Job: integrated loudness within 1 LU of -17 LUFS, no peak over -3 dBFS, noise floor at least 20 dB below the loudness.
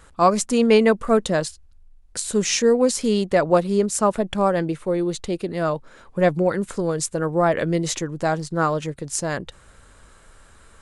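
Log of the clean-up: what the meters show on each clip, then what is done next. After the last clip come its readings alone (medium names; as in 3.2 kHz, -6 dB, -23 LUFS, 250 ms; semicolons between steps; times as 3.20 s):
loudness -21.5 LUFS; peak level -4.0 dBFS; loudness target -17.0 LUFS
-> trim +4.5 dB; peak limiter -3 dBFS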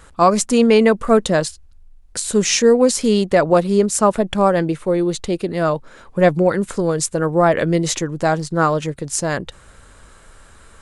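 loudness -17.0 LUFS; peak level -3.0 dBFS; noise floor -46 dBFS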